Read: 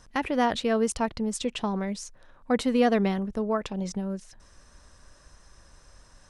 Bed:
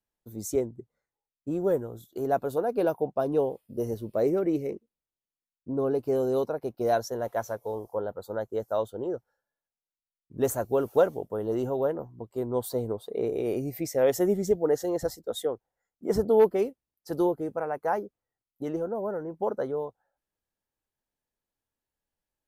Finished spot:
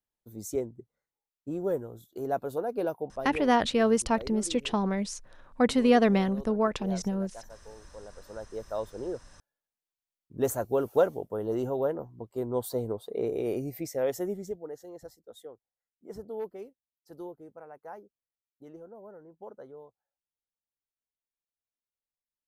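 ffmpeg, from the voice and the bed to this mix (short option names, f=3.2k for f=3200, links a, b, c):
-filter_complex "[0:a]adelay=3100,volume=1dB[a];[1:a]volume=11dB,afade=t=out:st=2.75:d=0.89:silence=0.237137,afade=t=in:st=7.96:d=1.47:silence=0.177828,afade=t=out:st=13.47:d=1.23:silence=0.177828[b];[a][b]amix=inputs=2:normalize=0"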